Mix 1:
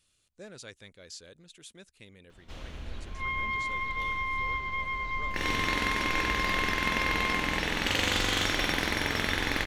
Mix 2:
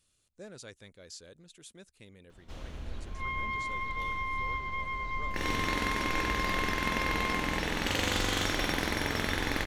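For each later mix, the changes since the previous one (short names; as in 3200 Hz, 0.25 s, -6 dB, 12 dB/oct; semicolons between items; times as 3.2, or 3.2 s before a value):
master: add bell 2700 Hz -4.5 dB 1.9 oct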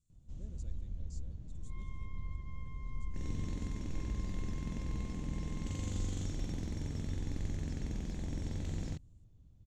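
first sound: entry -2.20 s; second sound: entry -1.50 s; master: add EQ curve 150 Hz 0 dB, 440 Hz -15 dB, 1500 Hz -28 dB, 5100 Hz -19 dB, 7200 Hz -8 dB, 11000 Hz -27 dB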